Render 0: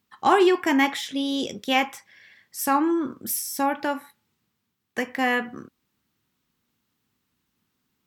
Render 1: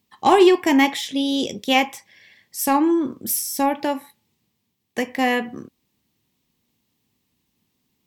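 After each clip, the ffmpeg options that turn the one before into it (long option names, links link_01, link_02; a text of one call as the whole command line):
ffmpeg -i in.wav -af "equalizer=frequency=1400:width=2.7:gain=-13,aeval=exprs='0.447*(cos(1*acos(clip(val(0)/0.447,-1,1)))-cos(1*PI/2))+0.00891*(cos(7*acos(clip(val(0)/0.447,-1,1)))-cos(7*PI/2))':channel_layout=same,volume=5.5dB" out.wav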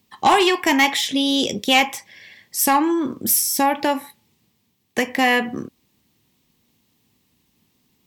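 ffmpeg -i in.wav -filter_complex "[0:a]acrossover=split=790|1000[link_01][link_02][link_03];[link_01]acompressor=threshold=-25dB:ratio=6[link_04];[link_04][link_02][link_03]amix=inputs=3:normalize=0,asoftclip=type=tanh:threshold=-13.5dB,volume=6.5dB" out.wav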